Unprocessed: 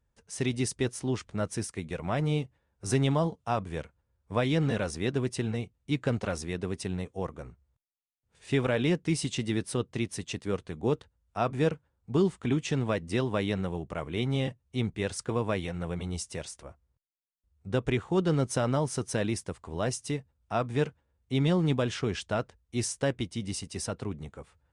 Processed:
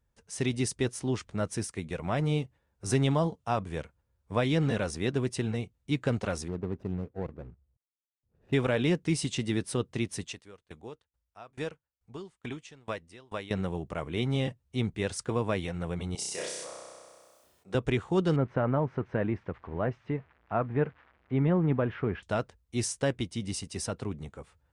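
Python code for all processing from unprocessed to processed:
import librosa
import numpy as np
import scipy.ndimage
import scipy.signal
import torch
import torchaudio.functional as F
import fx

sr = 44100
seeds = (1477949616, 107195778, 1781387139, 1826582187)

y = fx.chain(x, sr, fx.median_filter(points=41),
    fx.lowpass(hz=1200.0, slope=6), at=(6.48, 8.53))
y = fx.chain(y, sr, fx.peak_eq(hz=170.0, db=-9.0, octaves=2.9),
    fx.tremolo_decay(direction='decaying', hz=2.3, depth_db=26), at=(10.27, 13.51))
y = fx.chain(y, sr, fx.highpass(hz=380.0, slope=12),
    fx.room_flutter(wall_m=5.5, rt60_s=0.95),
    fx.sustainer(db_per_s=29.0), at=(16.15, 17.75))
y = fx.chain(y, sr, fx.crossing_spikes(level_db=-32.0),
    fx.lowpass(hz=2000.0, slope=24), at=(18.36, 22.23))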